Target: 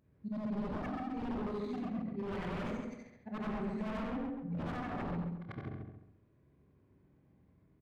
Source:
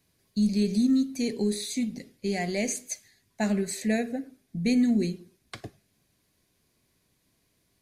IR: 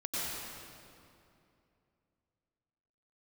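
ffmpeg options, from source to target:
-filter_complex "[0:a]afftfilt=real='re':imag='-im':win_size=8192:overlap=0.75,highpass=frequency=50:width=0.5412,highpass=frequency=50:width=1.3066,aresample=22050,aresample=44100,asoftclip=type=tanh:threshold=-25.5dB,asplit=2[link_01][link_02];[link_02]aecho=0:1:28|71:0.422|0.596[link_03];[link_01][link_03]amix=inputs=2:normalize=0,adynamicsmooth=sensitivity=4:basefreq=1200,aeval=exprs='0.0211*(abs(mod(val(0)/0.0211+3,4)-2)-1)':channel_layout=same,bandreject=frequency=690:width=13,acompressor=threshold=-52dB:ratio=2,bass=frequency=250:gain=4,treble=frequency=4000:gain=-11,asplit=2[link_04][link_05];[link_05]adelay=135,lowpass=frequency=2600:poles=1,volume=-4dB,asplit=2[link_06][link_07];[link_07]adelay=135,lowpass=frequency=2600:poles=1,volume=0.33,asplit=2[link_08][link_09];[link_09]adelay=135,lowpass=frequency=2600:poles=1,volume=0.33,asplit=2[link_10][link_11];[link_11]adelay=135,lowpass=frequency=2600:poles=1,volume=0.33[link_12];[link_06][link_08][link_10][link_12]amix=inputs=4:normalize=0[link_13];[link_04][link_13]amix=inputs=2:normalize=0,volume=6dB"

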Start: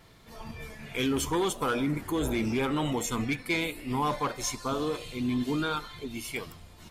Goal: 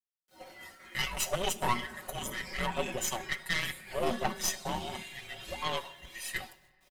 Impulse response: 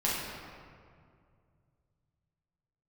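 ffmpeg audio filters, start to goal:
-filter_complex "[0:a]agate=range=-33dB:threshold=-38dB:ratio=3:detection=peak,highpass=frequency=560:width=0.5412,highpass=frequency=560:width=1.3066,aecho=1:1:5.4:0.91,acrusher=bits=10:mix=0:aa=0.000001,afreqshift=-360,aeval=exprs='0.211*(cos(1*acos(clip(val(0)/0.211,-1,1)))-cos(1*PI/2))+0.0531*(cos(4*acos(clip(val(0)/0.211,-1,1)))-cos(4*PI/2))':channel_layout=same,asplit=2[link_01][link_02];[1:a]atrim=start_sample=2205,highshelf=frequency=4500:gain=9[link_03];[link_02][link_03]afir=irnorm=-1:irlink=0,volume=-28.5dB[link_04];[link_01][link_04]amix=inputs=2:normalize=0,volume=-3dB"

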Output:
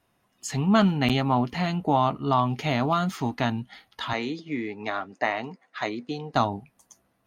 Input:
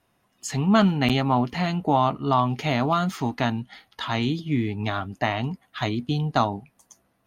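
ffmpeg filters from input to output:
ffmpeg -i in.wav -filter_complex "[0:a]asettb=1/sr,asplit=3[link_01][link_02][link_03];[link_01]atrim=end=4.134[link_04];[link_02]atrim=start=4.13:end=6.34,asetpts=PTS-STARTPTS,afade=type=in:duration=0.004:curve=qsin,afade=type=out:start_time=2.206:duration=0.004:curve=qsin,highpass=310,equalizer=frequency=490:width_type=q:width=4:gain=6,equalizer=frequency=2000:width_type=q:width=4:gain=4,equalizer=frequency=3200:width_type=q:width=4:gain=-9,lowpass=frequency=7400:width=0.5412,lowpass=frequency=7400:width=1.3066[link_05];[link_03]atrim=start=6.336[link_06];[link_04][link_05]acrossfade=duration=0.004:curve1=hsin:curve2=qsin[link_07];[link_07][link_06]acrossfade=duration=0.004:curve1=qsin:curve2=hsin,volume=-1.5dB" out.wav

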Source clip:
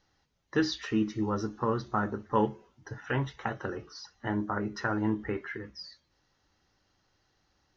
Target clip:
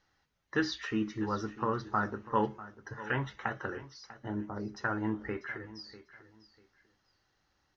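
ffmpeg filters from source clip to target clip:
ffmpeg -i in.wav -af "asetnsamples=nb_out_samples=441:pad=0,asendcmd='3.77 equalizer g -10.5;4.84 equalizer g 4',equalizer=frequency=1600:width=0.87:gain=6,aecho=1:1:645|1290:0.15|0.0359,volume=-4.5dB" out.wav

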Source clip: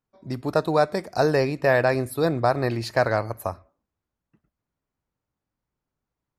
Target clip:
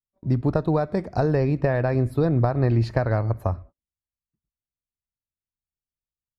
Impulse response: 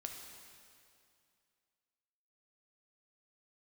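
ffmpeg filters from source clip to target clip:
-af "acompressor=threshold=-22dB:ratio=6,agate=range=-28dB:threshold=-51dB:ratio=16:detection=peak,aemphasis=mode=reproduction:type=riaa"

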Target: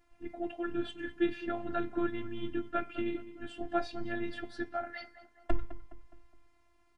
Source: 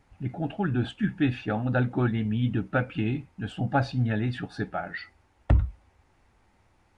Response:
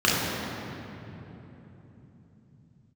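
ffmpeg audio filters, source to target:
-filter_complex "[0:a]bandreject=frequency=260.2:width_type=h:width=4,bandreject=frequency=520.4:width_type=h:width=4,bandreject=frequency=780.6:width_type=h:width=4,bandreject=frequency=1040.8:width_type=h:width=4,bandreject=frequency=1301:width_type=h:width=4,bandreject=frequency=1561.2:width_type=h:width=4,bandreject=frequency=1821.4:width_type=h:width=4,bandreject=frequency=2081.6:width_type=h:width=4,bandreject=frequency=2341.8:width_type=h:width=4,bandreject=frequency=2602:width_type=h:width=4,bandreject=frequency=2862.2:width_type=h:width=4,bandreject=frequency=3122.4:width_type=h:width=4,bandreject=frequency=3382.6:width_type=h:width=4,bandreject=frequency=3642.8:width_type=h:width=4,bandreject=frequency=3903:width_type=h:width=4,bandreject=frequency=4163.2:width_type=h:width=4,bandreject=frequency=4423.4:width_type=h:width=4,bandreject=frequency=4683.6:width_type=h:width=4,bandreject=frequency=4943.8:width_type=h:width=4,bandreject=frequency=5204:width_type=h:width=4,bandreject=frequency=5464.2:width_type=h:width=4,bandreject=frequency=5724.4:width_type=h:width=4,bandreject=frequency=5984.6:width_type=h:width=4,bandreject=frequency=6244.8:width_type=h:width=4,bandreject=frequency=6505:width_type=h:width=4,bandreject=frequency=6765.2:width_type=h:width=4,bandreject=frequency=7025.4:width_type=h:width=4,bandreject=frequency=7285.6:width_type=h:width=4,afftfilt=real='hypot(re,im)*cos(PI*b)':imag='0':win_size=512:overlap=0.75,asplit=2[link_01][link_02];[link_02]adelay=208,lowpass=frequency=2400:poles=1,volume=-14dB,asplit=2[link_03][link_04];[link_04]adelay=208,lowpass=frequency=2400:poles=1,volume=0.46,asplit=2[link_05][link_06];[link_06]adelay=208,lowpass=frequency=2400:poles=1,volume=0.46,asplit=2[link_07][link_08];[link_08]adelay=208,lowpass=frequency=2400:poles=1,volume=0.46[link_09];[link_01][link_03][link_05][link_07][link_09]amix=inputs=5:normalize=0,volume=-2dB"

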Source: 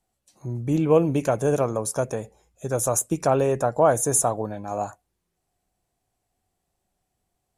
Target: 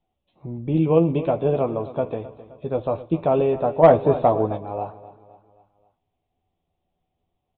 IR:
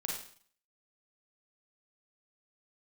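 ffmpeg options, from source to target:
-filter_complex "[0:a]equalizer=frequency=1600:width=2:gain=-12.5,asplit=2[link_01][link_02];[link_02]adelay=12,volume=-6dB[link_03];[link_01][link_03]amix=inputs=2:normalize=0,aecho=1:1:261|522|783|1044:0.158|0.0761|0.0365|0.0175,asplit=2[link_04][link_05];[1:a]atrim=start_sample=2205,asetrate=36162,aresample=44100[link_06];[link_05][link_06]afir=irnorm=-1:irlink=0,volume=-21dB[link_07];[link_04][link_07]amix=inputs=2:normalize=0,aresample=8000,aresample=44100,asplit=3[link_08][link_09][link_10];[link_08]afade=type=out:start_time=3.82:duration=0.02[link_11];[link_09]acontrast=51,afade=type=in:start_time=3.82:duration=0.02,afade=type=out:start_time=4.56:duration=0.02[link_12];[link_10]afade=type=in:start_time=4.56:duration=0.02[link_13];[link_11][link_12][link_13]amix=inputs=3:normalize=0"

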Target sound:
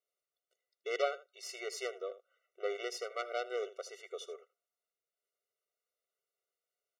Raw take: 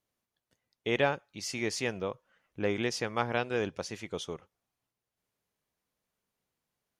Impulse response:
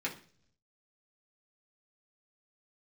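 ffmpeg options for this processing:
-af "aecho=1:1:79:0.158,aeval=exprs='0.211*(cos(1*acos(clip(val(0)/0.211,-1,1)))-cos(1*PI/2))+0.106*(cos(2*acos(clip(val(0)/0.211,-1,1)))-cos(2*PI/2))+0.0211*(cos(3*acos(clip(val(0)/0.211,-1,1)))-cos(3*PI/2))':channel_layout=same,afftfilt=real='re*eq(mod(floor(b*sr/1024/380),2),1)':imag='im*eq(mod(floor(b*sr/1024/380),2),1)':win_size=1024:overlap=0.75,volume=-1.5dB"

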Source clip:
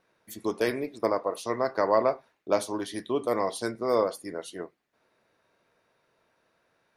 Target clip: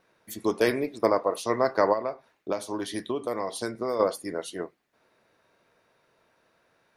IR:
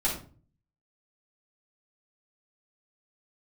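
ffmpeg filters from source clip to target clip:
-filter_complex "[0:a]asplit=3[link_01][link_02][link_03];[link_01]afade=type=out:start_time=1.92:duration=0.02[link_04];[link_02]acompressor=threshold=-30dB:ratio=5,afade=type=in:start_time=1.92:duration=0.02,afade=type=out:start_time=3.99:duration=0.02[link_05];[link_03]afade=type=in:start_time=3.99:duration=0.02[link_06];[link_04][link_05][link_06]amix=inputs=3:normalize=0,volume=3.5dB"

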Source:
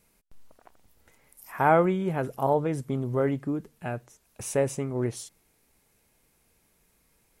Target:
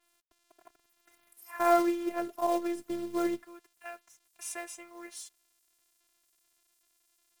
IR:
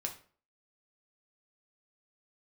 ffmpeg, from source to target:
-af "asetnsamples=nb_out_samples=441:pad=0,asendcmd='3.43 highpass f 980',highpass=210,acrusher=bits=4:mode=log:mix=0:aa=0.000001,afftfilt=real='hypot(re,im)*cos(PI*b)':imag='0':win_size=512:overlap=0.75,acrusher=bits=10:mix=0:aa=0.000001,adynamicequalizer=threshold=0.00316:dfrequency=3700:dqfactor=0.7:tfrequency=3700:tqfactor=0.7:attack=5:release=100:ratio=0.375:range=2:mode=cutabove:tftype=highshelf"

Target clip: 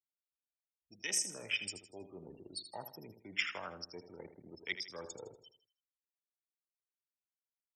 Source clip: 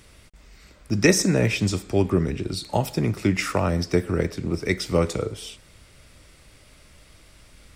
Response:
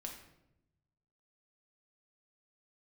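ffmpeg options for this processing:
-filter_complex "[0:a]afwtdn=0.0501,afftfilt=real='re*gte(hypot(re,im),0.00891)':imag='im*gte(hypot(re,im),0.00891)':win_size=1024:overlap=0.75,crystalizer=i=2.5:c=0,areverse,acompressor=threshold=-26dB:ratio=4,areverse,aderivative,dynaudnorm=framelen=410:gausssize=5:maxgain=11.5dB,asplit=2[link_01][link_02];[link_02]aecho=0:1:80|160|240|320:0.282|0.107|0.0407|0.0155[link_03];[link_01][link_03]amix=inputs=2:normalize=0,volume=-5.5dB"

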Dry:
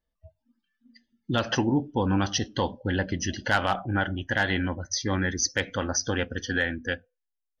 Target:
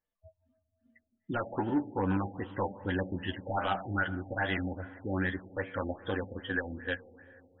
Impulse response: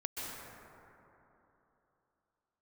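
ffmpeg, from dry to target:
-filter_complex "[0:a]lowshelf=frequency=210:gain=-8.5,volume=21dB,asoftclip=hard,volume=-21dB,flanger=delay=10:depth=1.2:regen=21:speed=1.1:shape=triangular,asplit=2[link_01][link_02];[1:a]atrim=start_sample=2205,lowpass=4100[link_03];[link_02][link_03]afir=irnorm=-1:irlink=0,volume=-17dB[link_04];[link_01][link_04]amix=inputs=2:normalize=0,afftfilt=real='re*lt(b*sr/1024,820*pow(4000/820,0.5+0.5*sin(2*PI*2.5*pts/sr)))':imag='im*lt(b*sr/1024,820*pow(4000/820,0.5+0.5*sin(2*PI*2.5*pts/sr)))':win_size=1024:overlap=0.75"

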